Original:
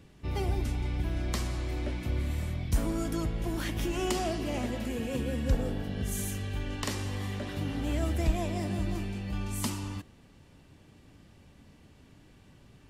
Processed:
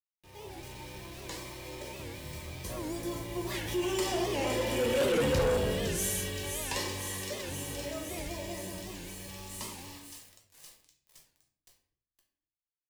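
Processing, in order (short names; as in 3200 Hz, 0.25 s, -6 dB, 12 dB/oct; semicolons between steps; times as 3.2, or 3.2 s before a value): Doppler pass-by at 5.24, 10 m/s, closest 3.2 m; comb 2.1 ms, depth 41%; thin delay 0.516 s, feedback 72%, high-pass 4000 Hz, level -7.5 dB; in parallel at -3 dB: compressor, threshold -49 dBFS, peak gain reduction 27 dB; on the sum: HPF 310 Hz 6 dB/oct; bit-crush 10-bit; Butterworth band-stop 1400 Hz, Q 6.4; shoebox room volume 87 m³, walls mixed, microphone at 0.89 m; soft clip -33.5 dBFS, distortion -8 dB; AGC gain up to 10 dB; record warp 78 rpm, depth 160 cents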